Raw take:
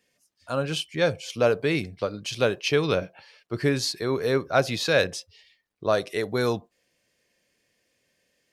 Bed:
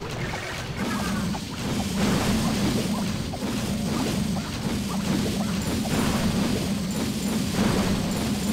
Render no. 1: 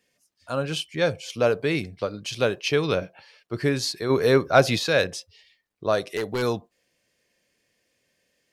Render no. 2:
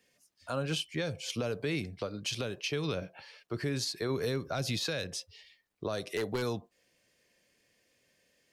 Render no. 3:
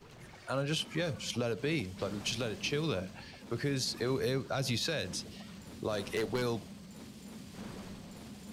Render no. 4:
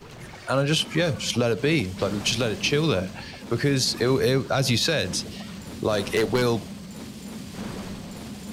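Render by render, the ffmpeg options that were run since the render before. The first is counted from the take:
-filter_complex "[0:a]asplit=3[s0][s1][s2];[s0]afade=t=out:st=4.09:d=0.02[s3];[s1]acontrast=35,afade=t=in:st=4.09:d=0.02,afade=t=out:st=4.78:d=0.02[s4];[s2]afade=t=in:st=4.78:d=0.02[s5];[s3][s4][s5]amix=inputs=3:normalize=0,asplit=3[s6][s7][s8];[s6]afade=t=out:st=6.01:d=0.02[s9];[s7]aeval=exprs='0.1*(abs(mod(val(0)/0.1+3,4)-2)-1)':c=same,afade=t=in:st=6.01:d=0.02,afade=t=out:st=6.41:d=0.02[s10];[s8]afade=t=in:st=6.41:d=0.02[s11];[s9][s10][s11]amix=inputs=3:normalize=0"
-filter_complex "[0:a]acrossover=split=250|3000[s0][s1][s2];[s1]acompressor=threshold=0.0501:ratio=6[s3];[s0][s3][s2]amix=inputs=3:normalize=0,alimiter=limit=0.0668:level=0:latency=1:release=317"
-filter_complex "[1:a]volume=0.075[s0];[0:a][s0]amix=inputs=2:normalize=0"
-af "volume=3.55"

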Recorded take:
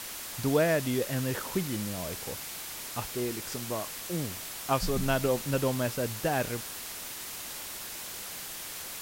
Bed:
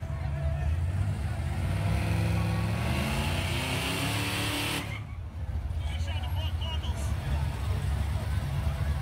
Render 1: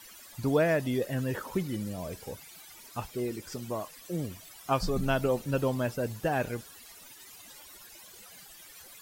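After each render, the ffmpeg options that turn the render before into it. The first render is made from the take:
-af "afftdn=nr=16:nf=-40"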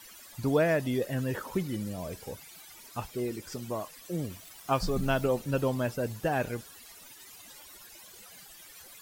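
-filter_complex "[0:a]asettb=1/sr,asplit=3[s0][s1][s2];[s0]atrim=end=4.304[s3];[s1]atrim=start=4.3:end=5.27,asetpts=PTS-STARTPTS,afade=t=in:d=0.004:c=qsin,afade=t=out:st=0.966:d=0.004:c=qsin,acrusher=bits=7:mix=0:aa=0.5[s4];[s2]atrim=start=5.266[s5];[s3][s4]acrossfade=d=0.004:c1=hsin:c2=qsin[s6];[s6][s5]acrossfade=d=0.004:c1=qsin:c2=hsin"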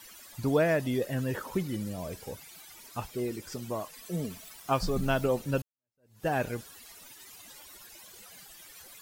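-filter_complex "[0:a]asettb=1/sr,asplit=3[s0][s1][s2];[s0]atrim=end=3.934[s3];[s1]atrim=start=3.93:end=4.56,asetpts=PTS-STARTPTS,afade=t=in:d=0.004:c=qsin,afade=t=out:st=0.626:d=0.004:c=qsin,aecho=1:1:4.6:0.59,atrim=end_sample=27783[s4];[s2]atrim=start=4.556[s5];[s3][s4]acrossfade=d=0.004:c1=hsin:c2=qsin[s6];[s6][s5]acrossfade=d=0.004:c1=qsin:c2=hsin,asplit=2[s7][s8];[s7]atrim=end=5.62,asetpts=PTS-STARTPTS,afade=t=out:st=5.616:d=0.004:c=hsin[s9];[s8]atrim=start=5.62,asetpts=PTS-STARTPTS,afade=t=in:d=0.65:c=exp[s10];[s9][s10]concat=n=2:v=0:a=1"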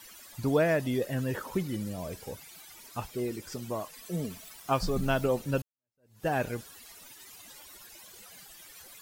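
-af anull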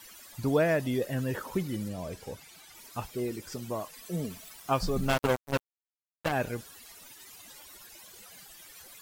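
-filter_complex "[0:a]asettb=1/sr,asplit=3[s0][s1][s2];[s0]atrim=end=1.884[s3];[s1]atrim=start=1.88:end=2.75,asetpts=PTS-STARTPTS,afade=t=in:d=0.004:c=qsin,afade=t=out:st=0.866:d=0.004:c=qsin,highshelf=f=11000:g=-9.5[s4];[s2]atrim=start=2.746[s5];[s3][s4]acrossfade=d=0.004:c1=hsin:c2=qsin[s6];[s6][s5]acrossfade=d=0.004:c1=qsin:c2=hsin,asplit=3[s7][s8][s9];[s7]afade=t=out:st=5.08:d=0.02[s10];[s8]acrusher=bits=3:mix=0:aa=0.5,afade=t=in:st=5.08:d=0.02,afade=t=out:st=6.31:d=0.02[s11];[s9]afade=t=in:st=6.31:d=0.02[s12];[s10][s11][s12]amix=inputs=3:normalize=0"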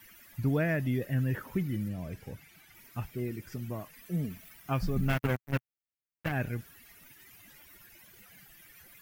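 -af "equalizer=f=125:t=o:w=1:g=5,equalizer=f=500:t=o:w=1:g=-7,equalizer=f=1000:t=o:w=1:g=-8,equalizer=f=2000:t=o:w=1:g=4,equalizer=f=4000:t=o:w=1:g=-9,equalizer=f=8000:t=o:w=1:g=-11"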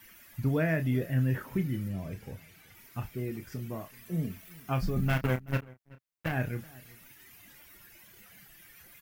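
-filter_complex "[0:a]asplit=2[s0][s1];[s1]adelay=31,volume=0.376[s2];[s0][s2]amix=inputs=2:normalize=0,asplit=2[s3][s4];[s4]adelay=379,volume=0.0794,highshelf=f=4000:g=-8.53[s5];[s3][s5]amix=inputs=2:normalize=0"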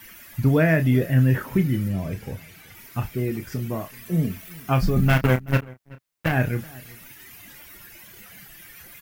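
-af "volume=2.99"

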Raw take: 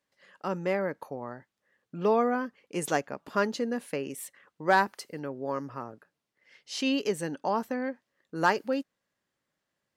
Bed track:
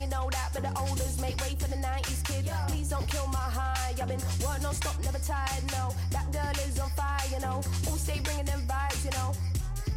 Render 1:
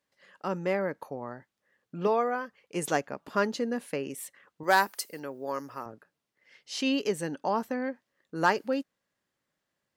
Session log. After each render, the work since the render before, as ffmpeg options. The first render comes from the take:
-filter_complex "[0:a]asettb=1/sr,asplit=3[s0][s1][s2];[s0]atrim=end=2.074[s3];[s1]atrim=start=2.07:end=2.75,asetpts=PTS-STARTPTS,afade=t=in:d=0.004:c=qsin,afade=t=out:st=0.676:d=0.004:c=qsin,equalizer=f=270:t=o:w=0.77:g=-10.5[s4];[s2]atrim=start=2.746[s5];[s3][s4]acrossfade=d=0.004:c1=hsin:c2=qsin[s6];[s6][s5]acrossfade=d=0.004:c1=qsin:c2=hsin,asettb=1/sr,asplit=3[s7][s8][s9];[s7]atrim=end=4.634[s10];[s8]atrim=start=4.63:end=5.86,asetpts=PTS-STARTPTS,afade=t=in:d=0.004:c=qsin,afade=t=out:st=1.226:d=0.004:c=qsin,aemphasis=mode=production:type=bsi[s11];[s9]atrim=start=5.856[s12];[s10][s11]acrossfade=d=0.004:c1=hsin:c2=qsin[s13];[s13][s12]acrossfade=d=0.004:c1=qsin:c2=hsin"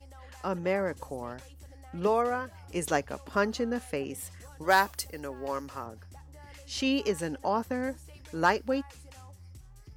-filter_complex "[1:a]volume=0.112[s0];[0:a][s0]amix=inputs=2:normalize=0"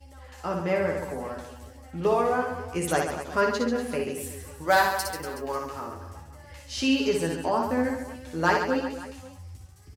-filter_complex "[0:a]asplit=2[s0][s1];[s1]adelay=12,volume=0.631[s2];[s0][s2]amix=inputs=2:normalize=0,aecho=1:1:60|138|239.4|371.2|542.6:0.631|0.398|0.251|0.158|0.1"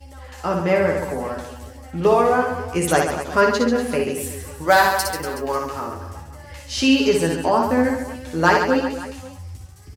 -af "volume=2.37,alimiter=limit=0.708:level=0:latency=1"

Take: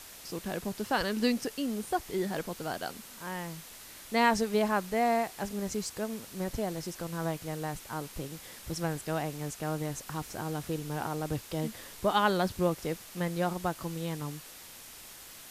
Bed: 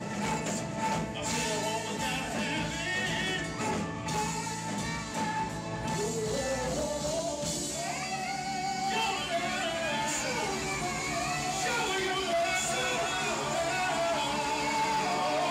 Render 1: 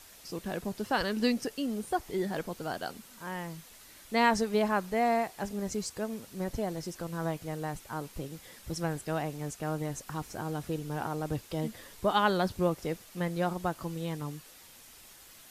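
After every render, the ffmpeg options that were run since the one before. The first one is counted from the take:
-af "afftdn=nr=6:nf=-49"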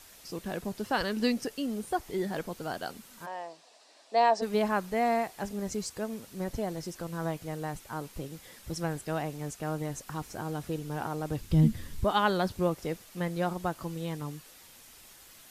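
-filter_complex "[0:a]asplit=3[s0][s1][s2];[s0]afade=t=out:st=3.25:d=0.02[s3];[s1]highpass=f=330:w=0.5412,highpass=f=330:w=1.3066,equalizer=f=360:t=q:w=4:g=-6,equalizer=f=680:t=q:w=4:g=9,equalizer=f=1400:t=q:w=4:g=-9,equalizer=f=2100:t=q:w=4:g=-9,equalizer=f=3200:t=q:w=4:g=-6,equalizer=f=6400:t=q:w=4:g=-7,lowpass=f=6900:w=0.5412,lowpass=f=6900:w=1.3066,afade=t=in:st=3.25:d=0.02,afade=t=out:st=4.41:d=0.02[s4];[s2]afade=t=in:st=4.41:d=0.02[s5];[s3][s4][s5]amix=inputs=3:normalize=0,asplit=3[s6][s7][s8];[s6]afade=t=out:st=11.4:d=0.02[s9];[s7]asubboost=boost=11:cutoff=170,afade=t=in:st=11.4:d=0.02,afade=t=out:st=12.03:d=0.02[s10];[s8]afade=t=in:st=12.03:d=0.02[s11];[s9][s10][s11]amix=inputs=3:normalize=0"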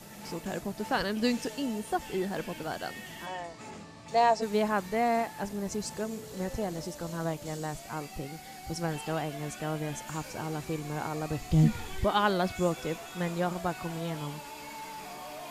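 -filter_complex "[1:a]volume=0.211[s0];[0:a][s0]amix=inputs=2:normalize=0"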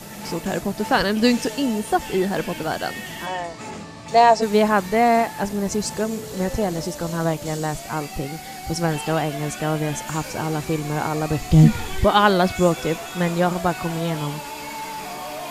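-af "volume=3.35,alimiter=limit=0.708:level=0:latency=1"

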